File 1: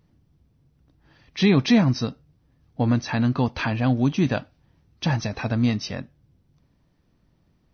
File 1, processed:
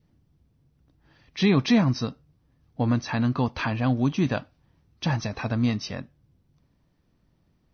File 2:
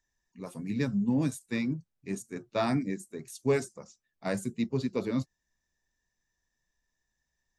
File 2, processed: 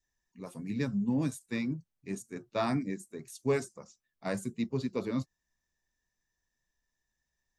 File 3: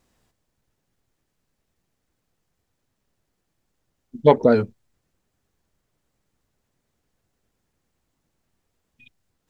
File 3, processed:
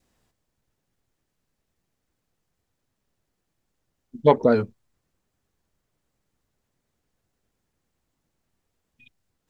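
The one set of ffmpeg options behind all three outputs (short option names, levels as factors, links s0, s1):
-af "adynamicequalizer=threshold=0.00501:dfrequency=1100:dqfactor=3.8:tfrequency=1100:tqfactor=3.8:attack=5:release=100:ratio=0.375:range=2:mode=boostabove:tftype=bell,volume=0.75"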